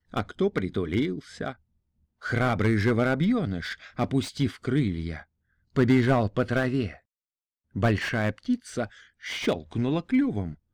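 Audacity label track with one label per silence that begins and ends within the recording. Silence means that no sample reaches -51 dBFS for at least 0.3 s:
1.560000	2.220000	silence
5.240000	5.750000	silence
6.990000	7.740000	silence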